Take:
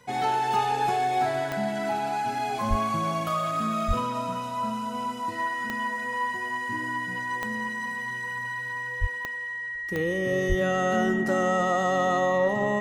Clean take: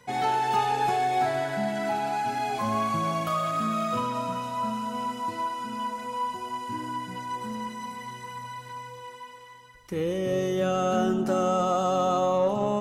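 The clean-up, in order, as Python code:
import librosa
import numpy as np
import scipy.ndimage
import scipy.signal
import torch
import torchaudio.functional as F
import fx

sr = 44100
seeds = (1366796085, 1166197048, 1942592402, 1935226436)

y = fx.fix_declick_ar(x, sr, threshold=10.0)
y = fx.notch(y, sr, hz=1900.0, q=30.0)
y = fx.fix_deplosive(y, sr, at_s=(2.69, 3.87, 9.0, 10.48))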